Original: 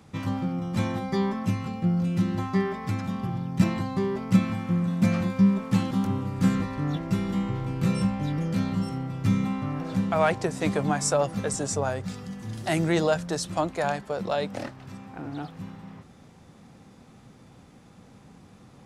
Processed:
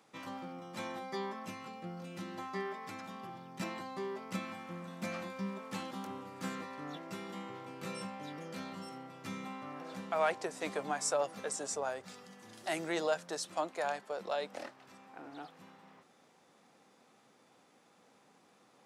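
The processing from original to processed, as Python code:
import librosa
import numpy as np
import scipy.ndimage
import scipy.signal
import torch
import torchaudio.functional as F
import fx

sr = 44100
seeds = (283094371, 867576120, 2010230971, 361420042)

y = scipy.signal.sosfilt(scipy.signal.butter(2, 410.0, 'highpass', fs=sr, output='sos'), x)
y = y * librosa.db_to_amplitude(-7.5)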